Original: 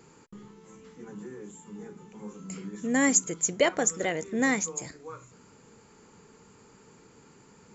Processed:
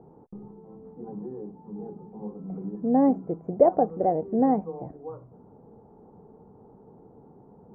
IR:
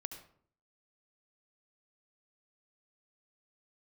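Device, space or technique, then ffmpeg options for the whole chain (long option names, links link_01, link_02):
under water: -af "lowpass=frequency=770:width=0.5412,lowpass=frequency=770:width=1.3066,equalizer=frequency=760:width_type=o:width=0.39:gain=9.5,volume=4.5dB"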